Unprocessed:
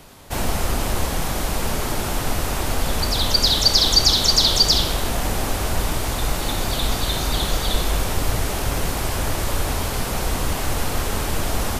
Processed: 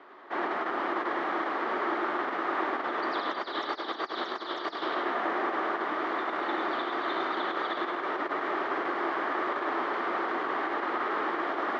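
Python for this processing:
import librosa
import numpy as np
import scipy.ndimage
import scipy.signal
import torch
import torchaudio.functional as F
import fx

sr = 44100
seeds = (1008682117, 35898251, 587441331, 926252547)

p1 = fx.over_compress(x, sr, threshold_db=-20.0, ratio=-0.5)
p2 = fx.cabinet(p1, sr, low_hz=330.0, low_slope=24, high_hz=2700.0, hz=(340.0, 500.0, 1200.0, 1800.0, 2600.0), db=(8, -5, 8, 5, -9))
p3 = p2 + fx.echo_single(p2, sr, ms=103, db=-4.5, dry=0)
y = p3 * librosa.db_to_amplitude(-5.5)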